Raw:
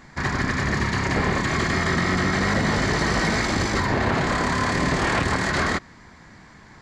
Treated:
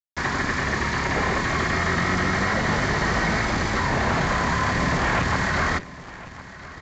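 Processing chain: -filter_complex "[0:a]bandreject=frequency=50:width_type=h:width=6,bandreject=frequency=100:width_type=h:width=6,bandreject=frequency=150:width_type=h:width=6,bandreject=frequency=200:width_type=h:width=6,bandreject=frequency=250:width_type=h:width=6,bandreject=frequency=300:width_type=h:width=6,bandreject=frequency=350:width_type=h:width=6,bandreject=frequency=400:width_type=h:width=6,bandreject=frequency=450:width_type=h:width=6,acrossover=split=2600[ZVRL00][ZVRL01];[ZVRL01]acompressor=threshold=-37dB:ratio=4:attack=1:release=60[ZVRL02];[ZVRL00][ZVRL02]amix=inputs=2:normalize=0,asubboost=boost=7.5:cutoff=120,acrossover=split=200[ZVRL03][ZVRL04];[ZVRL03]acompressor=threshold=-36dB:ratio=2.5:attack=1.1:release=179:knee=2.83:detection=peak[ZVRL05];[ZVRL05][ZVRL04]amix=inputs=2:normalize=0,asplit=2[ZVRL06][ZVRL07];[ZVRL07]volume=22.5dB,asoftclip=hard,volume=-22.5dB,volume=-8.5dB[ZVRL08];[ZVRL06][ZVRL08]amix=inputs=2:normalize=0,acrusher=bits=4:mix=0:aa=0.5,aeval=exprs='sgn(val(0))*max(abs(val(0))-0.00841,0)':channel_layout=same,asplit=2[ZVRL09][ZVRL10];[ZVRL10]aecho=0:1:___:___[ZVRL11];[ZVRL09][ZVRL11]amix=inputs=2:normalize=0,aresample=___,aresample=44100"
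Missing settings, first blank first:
1056, 0.133, 16000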